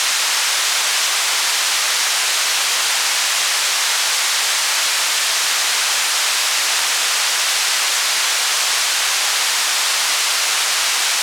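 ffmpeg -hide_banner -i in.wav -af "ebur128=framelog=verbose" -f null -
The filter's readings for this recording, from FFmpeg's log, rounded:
Integrated loudness:
  I:         -14.7 LUFS
  Threshold: -24.7 LUFS
Loudness range:
  LRA:         0.0 LU
  Threshold: -34.7 LUFS
  LRA low:   -14.8 LUFS
  LRA high:  -14.7 LUFS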